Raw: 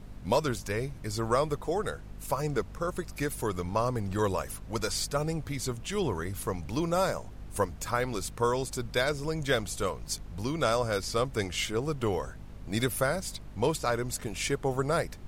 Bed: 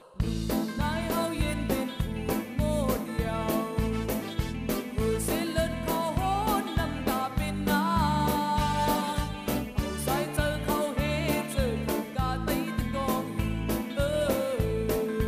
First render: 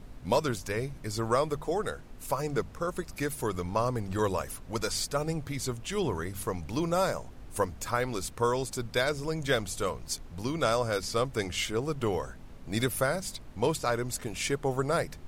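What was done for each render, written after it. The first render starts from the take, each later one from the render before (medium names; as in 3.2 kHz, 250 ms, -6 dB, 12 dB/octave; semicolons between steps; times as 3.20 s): de-hum 50 Hz, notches 4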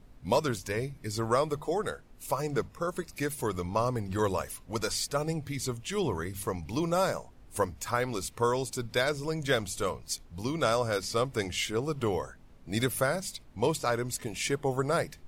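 noise print and reduce 8 dB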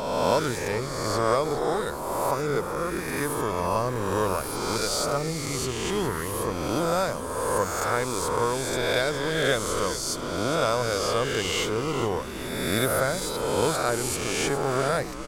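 reverse spectral sustain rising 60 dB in 1.71 s; frequency-shifting echo 411 ms, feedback 46%, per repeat -84 Hz, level -12 dB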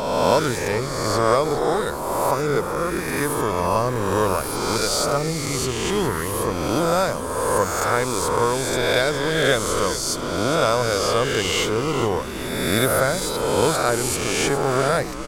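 trim +5 dB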